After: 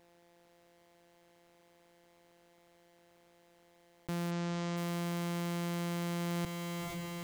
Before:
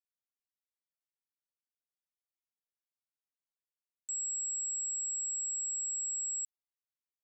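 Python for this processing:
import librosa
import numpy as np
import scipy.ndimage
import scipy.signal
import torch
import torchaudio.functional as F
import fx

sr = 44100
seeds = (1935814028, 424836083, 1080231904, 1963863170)

y = np.r_[np.sort(x[:len(x) // 256 * 256].reshape(-1, 256), axis=1).ravel(), x[len(x) // 256 * 256:]]
y = fx.echo_diffused(y, sr, ms=475, feedback_pct=55, wet_db=-12)
y = fx.rider(y, sr, range_db=10, speed_s=0.5)
y = fx.steep_lowpass(y, sr, hz=7500.0, slope=36, at=(4.3, 4.76), fade=0.02)
y = fx.env_flatten(y, sr, amount_pct=50)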